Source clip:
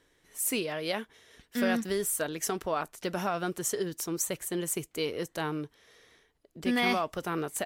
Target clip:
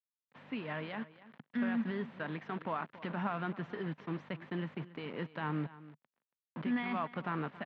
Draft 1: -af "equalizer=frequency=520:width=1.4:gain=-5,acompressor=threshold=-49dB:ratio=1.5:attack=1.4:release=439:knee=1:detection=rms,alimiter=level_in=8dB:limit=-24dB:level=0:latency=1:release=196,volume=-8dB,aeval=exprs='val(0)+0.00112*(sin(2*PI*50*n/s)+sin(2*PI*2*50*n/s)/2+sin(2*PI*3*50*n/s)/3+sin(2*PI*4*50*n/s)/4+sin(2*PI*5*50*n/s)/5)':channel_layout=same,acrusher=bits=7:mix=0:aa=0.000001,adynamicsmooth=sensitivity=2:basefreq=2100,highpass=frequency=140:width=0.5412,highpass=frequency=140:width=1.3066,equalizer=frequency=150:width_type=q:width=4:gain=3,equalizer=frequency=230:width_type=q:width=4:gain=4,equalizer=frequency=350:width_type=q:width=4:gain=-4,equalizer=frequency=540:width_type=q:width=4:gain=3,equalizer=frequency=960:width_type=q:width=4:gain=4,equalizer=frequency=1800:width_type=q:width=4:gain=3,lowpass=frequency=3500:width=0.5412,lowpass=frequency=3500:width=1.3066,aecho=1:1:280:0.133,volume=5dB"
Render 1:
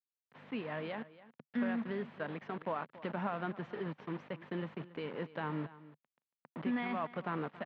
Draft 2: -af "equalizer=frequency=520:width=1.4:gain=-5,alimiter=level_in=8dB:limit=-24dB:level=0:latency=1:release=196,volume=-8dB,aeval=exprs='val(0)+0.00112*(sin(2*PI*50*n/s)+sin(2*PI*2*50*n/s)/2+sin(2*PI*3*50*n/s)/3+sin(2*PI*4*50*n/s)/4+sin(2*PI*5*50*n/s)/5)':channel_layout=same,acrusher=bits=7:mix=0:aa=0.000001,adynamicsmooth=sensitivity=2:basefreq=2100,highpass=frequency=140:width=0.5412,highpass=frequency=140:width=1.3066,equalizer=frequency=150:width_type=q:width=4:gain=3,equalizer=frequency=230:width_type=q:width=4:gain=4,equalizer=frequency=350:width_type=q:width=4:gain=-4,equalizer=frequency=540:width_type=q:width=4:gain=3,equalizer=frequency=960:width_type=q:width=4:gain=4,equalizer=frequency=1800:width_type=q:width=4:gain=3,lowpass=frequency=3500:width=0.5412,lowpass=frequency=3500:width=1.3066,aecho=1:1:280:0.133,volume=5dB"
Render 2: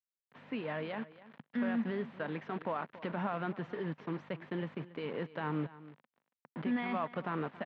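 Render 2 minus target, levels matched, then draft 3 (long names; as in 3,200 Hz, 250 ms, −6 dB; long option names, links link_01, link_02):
500 Hz band +3.0 dB
-af "equalizer=frequency=520:width=1.4:gain=-12,alimiter=level_in=8dB:limit=-24dB:level=0:latency=1:release=196,volume=-8dB,aeval=exprs='val(0)+0.00112*(sin(2*PI*50*n/s)+sin(2*PI*2*50*n/s)/2+sin(2*PI*3*50*n/s)/3+sin(2*PI*4*50*n/s)/4+sin(2*PI*5*50*n/s)/5)':channel_layout=same,acrusher=bits=7:mix=0:aa=0.000001,adynamicsmooth=sensitivity=2:basefreq=2100,highpass=frequency=140:width=0.5412,highpass=frequency=140:width=1.3066,equalizer=frequency=150:width_type=q:width=4:gain=3,equalizer=frequency=230:width_type=q:width=4:gain=4,equalizer=frequency=350:width_type=q:width=4:gain=-4,equalizer=frequency=540:width_type=q:width=4:gain=3,equalizer=frequency=960:width_type=q:width=4:gain=4,equalizer=frequency=1800:width_type=q:width=4:gain=3,lowpass=frequency=3500:width=0.5412,lowpass=frequency=3500:width=1.3066,aecho=1:1:280:0.133,volume=5dB"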